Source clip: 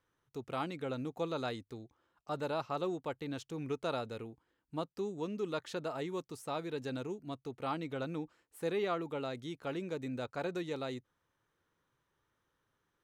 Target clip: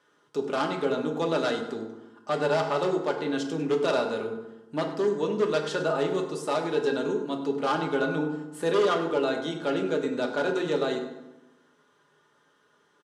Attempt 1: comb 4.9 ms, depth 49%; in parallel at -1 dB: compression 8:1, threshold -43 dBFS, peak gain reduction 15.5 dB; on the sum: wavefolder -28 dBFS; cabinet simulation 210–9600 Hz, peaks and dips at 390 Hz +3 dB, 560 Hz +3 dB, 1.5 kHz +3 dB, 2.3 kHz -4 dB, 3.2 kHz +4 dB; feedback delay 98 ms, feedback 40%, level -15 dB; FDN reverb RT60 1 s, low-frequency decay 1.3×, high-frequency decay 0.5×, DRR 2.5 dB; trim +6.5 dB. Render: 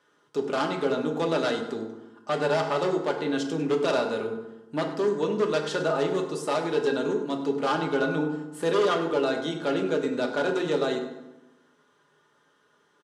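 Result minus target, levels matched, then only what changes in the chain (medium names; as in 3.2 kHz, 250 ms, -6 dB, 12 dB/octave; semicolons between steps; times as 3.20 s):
compression: peak gain reduction -6 dB
change: compression 8:1, threshold -50 dBFS, peak gain reduction 21.5 dB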